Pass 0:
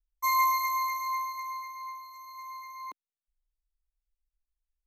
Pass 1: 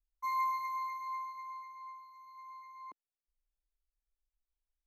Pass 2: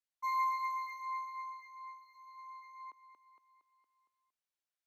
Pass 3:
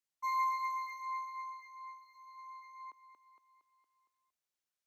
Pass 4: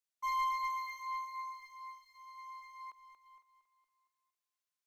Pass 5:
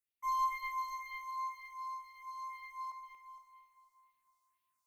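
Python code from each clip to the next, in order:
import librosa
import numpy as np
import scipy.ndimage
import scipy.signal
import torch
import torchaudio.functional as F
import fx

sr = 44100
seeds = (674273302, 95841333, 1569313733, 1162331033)

y1 = fx.lowpass(x, sr, hz=1000.0, slope=6)
y1 = y1 * librosa.db_to_amplitude(-4.5)
y2 = fx.weighting(y1, sr, curve='A')
y2 = fx.echo_feedback(y2, sr, ms=231, feedback_pct=57, wet_db=-11.0)
y2 = fx.end_taper(y2, sr, db_per_s=590.0)
y3 = fx.peak_eq(y2, sr, hz=6500.0, db=3.0, octaves=0.69)
y4 = fx.highpass(y3, sr, hz=1000.0, slope=6)
y4 = fx.leveller(y4, sr, passes=1)
y4 = y4 + 10.0 ** (-18.0 / 20.0) * np.pad(y4, (int(506 * sr / 1000.0), 0))[:len(y4)]
y5 = fx.rider(y4, sr, range_db=4, speed_s=2.0)
y5 = fx.phaser_stages(y5, sr, stages=4, low_hz=320.0, high_hz=1200.0, hz=2.0, feedback_pct=30)
y5 = fx.rev_plate(y5, sr, seeds[0], rt60_s=2.7, hf_ratio=0.95, predelay_ms=0, drr_db=7.5)
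y5 = y5 * librosa.db_to_amplitude(2.0)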